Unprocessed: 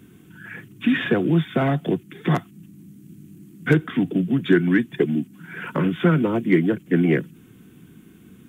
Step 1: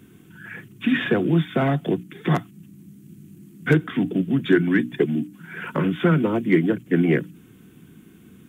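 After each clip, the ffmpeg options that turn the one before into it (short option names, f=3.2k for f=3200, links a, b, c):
-af "bandreject=f=60:t=h:w=6,bandreject=f=120:t=h:w=6,bandreject=f=180:t=h:w=6,bandreject=f=240:t=h:w=6,bandreject=f=300:t=h:w=6"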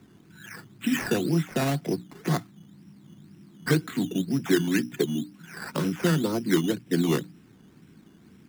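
-af "acrusher=samples=11:mix=1:aa=0.000001:lfo=1:lforange=6.6:lforate=2,volume=-5dB"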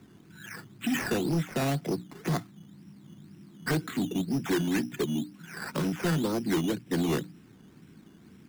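-af "asoftclip=type=tanh:threshold=-22dB"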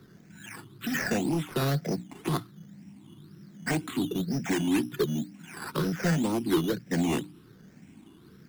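-af "afftfilt=real='re*pow(10,9/40*sin(2*PI*(0.6*log(max(b,1)*sr/1024/100)/log(2)-(1.2)*(pts-256)/sr)))':imag='im*pow(10,9/40*sin(2*PI*(0.6*log(max(b,1)*sr/1024/100)/log(2)-(1.2)*(pts-256)/sr)))':win_size=1024:overlap=0.75"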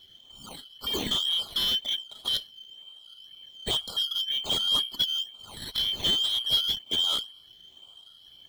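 -af "afftfilt=real='real(if(lt(b,272),68*(eq(floor(b/68),0)*1+eq(floor(b/68),1)*3+eq(floor(b/68),2)*0+eq(floor(b/68),3)*2)+mod(b,68),b),0)':imag='imag(if(lt(b,272),68*(eq(floor(b/68),0)*1+eq(floor(b/68),1)*3+eq(floor(b/68),2)*0+eq(floor(b/68),3)*2)+mod(b,68),b),0)':win_size=2048:overlap=0.75"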